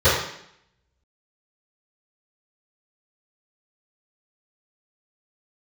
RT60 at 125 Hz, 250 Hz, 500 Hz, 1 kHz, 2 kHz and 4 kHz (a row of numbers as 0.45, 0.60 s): 0.65, 0.80, 0.70, 0.70, 0.70, 0.70 s